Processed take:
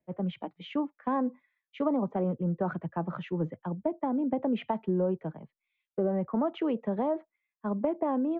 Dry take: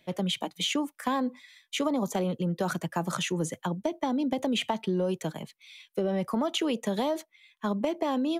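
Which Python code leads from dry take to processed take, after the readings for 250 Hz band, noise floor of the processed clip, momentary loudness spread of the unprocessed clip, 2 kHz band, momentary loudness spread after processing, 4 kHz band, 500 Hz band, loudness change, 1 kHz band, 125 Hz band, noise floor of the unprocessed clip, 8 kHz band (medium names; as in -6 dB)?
-0.5 dB, under -85 dBFS, 7 LU, -9.5 dB, 6 LU, -17.5 dB, -0.5 dB, -1.5 dB, -2.0 dB, -1.0 dB, -70 dBFS, under -40 dB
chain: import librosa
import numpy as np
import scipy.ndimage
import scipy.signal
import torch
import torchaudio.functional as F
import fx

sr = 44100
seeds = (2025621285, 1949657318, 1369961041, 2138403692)

y = scipy.signal.sosfilt(scipy.signal.bessel(4, 1200.0, 'lowpass', norm='mag', fs=sr, output='sos'), x)
y = fx.band_widen(y, sr, depth_pct=100)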